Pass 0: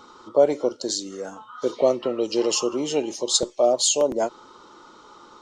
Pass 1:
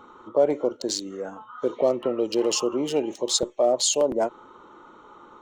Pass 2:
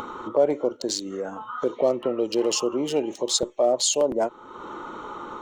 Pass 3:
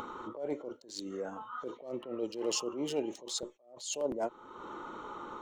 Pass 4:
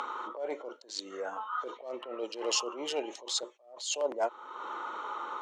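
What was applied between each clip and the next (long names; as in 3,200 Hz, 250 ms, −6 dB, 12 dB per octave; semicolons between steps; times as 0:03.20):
adaptive Wiener filter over 9 samples; in parallel at +1.5 dB: brickwall limiter −14.5 dBFS, peak gain reduction 8.5 dB; on the sum: level −6.5 dB
upward compression, threshold −24 dBFS
level that may rise only so fast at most 120 dB per second; level −7.5 dB
high-pass filter 680 Hz 12 dB per octave; high-frequency loss of the air 64 metres; level +8 dB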